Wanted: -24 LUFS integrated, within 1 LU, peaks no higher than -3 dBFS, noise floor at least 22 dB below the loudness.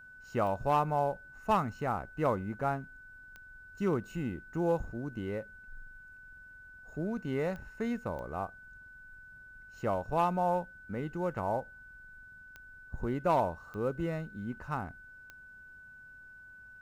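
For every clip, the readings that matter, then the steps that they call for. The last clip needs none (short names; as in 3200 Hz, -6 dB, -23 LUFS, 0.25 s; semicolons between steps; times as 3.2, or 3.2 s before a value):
clicks 7; steady tone 1500 Hz; tone level -50 dBFS; loudness -34.0 LUFS; peak -17.0 dBFS; loudness target -24.0 LUFS
-> de-click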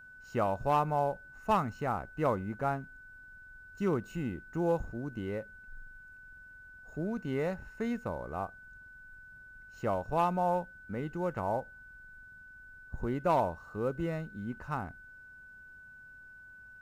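clicks 0; steady tone 1500 Hz; tone level -50 dBFS
-> notch 1500 Hz, Q 30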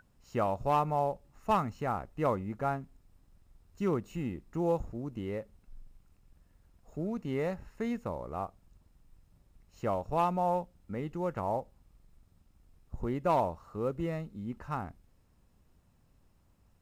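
steady tone none; loudness -34.0 LUFS; peak -17.5 dBFS; loudness target -24.0 LUFS
-> gain +10 dB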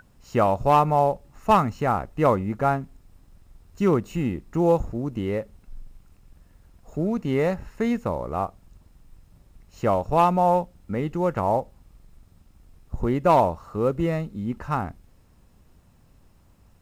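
loudness -24.0 LUFS; peak -7.5 dBFS; noise floor -57 dBFS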